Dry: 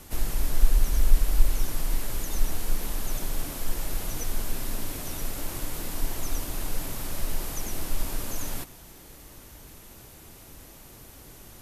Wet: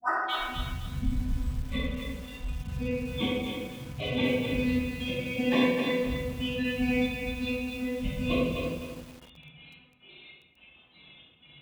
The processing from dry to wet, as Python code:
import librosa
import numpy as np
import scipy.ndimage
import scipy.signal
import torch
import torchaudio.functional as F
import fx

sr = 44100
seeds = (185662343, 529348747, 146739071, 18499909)

p1 = fx.tape_start_head(x, sr, length_s=0.64)
p2 = fx.step_gate(p1, sr, bpm=162, pattern='x..xxx...x.x.xx', floor_db=-24.0, edge_ms=4.5)
p3 = p2 + fx.echo_feedback(p2, sr, ms=489, feedback_pct=49, wet_db=-22.0, dry=0)
p4 = fx.lpc_monotone(p3, sr, seeds[0], pitch_hz=250.0, order=16)
p5 = np.sign(p4) * np.maximum(np.abs(p4) - 10.0 ** (-34.5 / 20.0), 0.0)
p6 = p4 + (p5 * librosa.db_to_amplitude(-4.5))
p7 = fx.low_shelf(p6, sr, hz=170.0, db=-10.5)
p8 = fx.noise_reduce_blind(p7, sr, reduce_db=26)
p9 = scipy.signal.sosfilt(scipy.signal.butter(4, 47.0, 'highpass', fs=sr, output='sos'), p8)
p10 = fx.room_shoebox(p9, sr, seeds[1], volume_m3=550.0, walls='mixed', distance_m=8.6)
p11 = fx.echo_crushed(p10, sr, ms=254, feedback_pct=35, bits=8, wet_db=-5)
y = p11 * librosa.db_to_amplitude(2.0)